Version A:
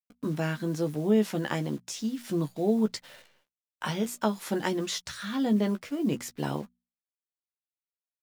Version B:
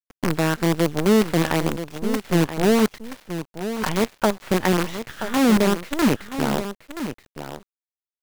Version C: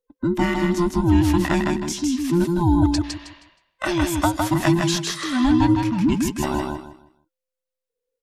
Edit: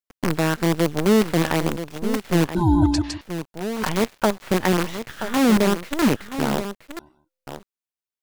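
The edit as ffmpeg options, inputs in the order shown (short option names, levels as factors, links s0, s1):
-filter_complex "[2:a]asplit=2[s0][s1];[1:a]asplit=3[s2][s3][s4];[s2]atrim=end=2.552[s5];[s0]atrim=start=2.548:end=3.212[s6];[s3]atrim=start=3.208:end=6.992[s7];[s1]atrim=start=6.988:end=7.472[s8];[s4]atrim=start=7.468[s9];[s5][s6]acrossfade=d=0.004:c1=hsin:c2=hsin[s10];[s10][s7]acrossfade=d=0.004:c1=hsin:c2=hsin[s11];[s11][s8]acrossfade=d=0.004:c1=hsin:c2=hsin[s12];[s12][s9]acrossfade=d=0.004:c1=hsin:c2=hsin"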